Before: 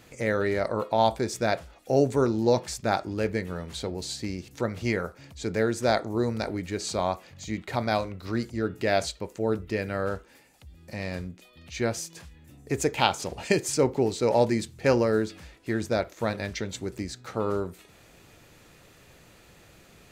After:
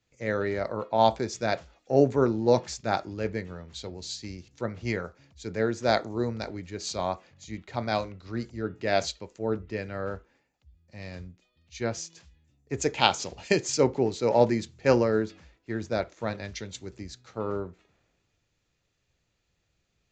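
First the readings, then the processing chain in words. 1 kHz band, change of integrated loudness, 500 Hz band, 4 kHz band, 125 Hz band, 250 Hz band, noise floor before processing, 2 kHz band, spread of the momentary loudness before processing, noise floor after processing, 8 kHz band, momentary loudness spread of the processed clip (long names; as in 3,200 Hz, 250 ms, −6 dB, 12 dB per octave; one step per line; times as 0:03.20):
−0.5 dB, −0.5 dB, −1.0 dB, +0.5 dB, −2.0 dB, −2.0 dB, −55 dBFS, −2.0 dB, 12 LU, −76 dBFS, −1.5 dB, 17 LU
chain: downsampling to 16,000 Hz
multiband upward and downward expander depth 70%
level −2.5 dB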